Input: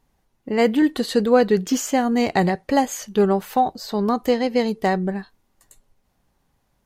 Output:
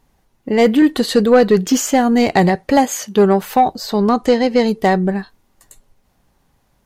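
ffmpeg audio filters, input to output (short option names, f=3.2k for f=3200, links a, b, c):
-filter_complex "[0:a]asettb=1/sr,asplit=3[a][b][c];[a]atrim=end=2.774[d];[b]atrim=start=2.77:end=3.41,asetpts=PTS-STARTPTS,afade=t=in:d=0.004:c=qsin,afade=t=out:st=0.636:d=0.004:c=qsin,highpass=120[e];[c]atrim=start=3.406[f];[d][e]acrossfade=d=0.004:c1=hsin:c2=qsin[g];[g][f]acrossfade=d=0.004:c1=qsin:c2=hsin,acontrast=79,asettb=1/sr,asplit=3[h][i][j];[h]atrim=end=4.084[k];[i]atrim=start=4.08:end=4.63,asetpts=PTS-STARTPTS,afade=t=in:d=0.004:c=qsin,afade=t=out:st=0.546:d=0.004:c=qsin,lowpass=f=10k:w=0.5412,lowpass=f=10k:w=1.3066[l];[j]atrim=start=4.626[m];[k][l]acrossfade=d=0.004:c1=hsin:c2=qsin[n];[n][m]acrossfade=d=0.004:c1=qsin:c2=hsin"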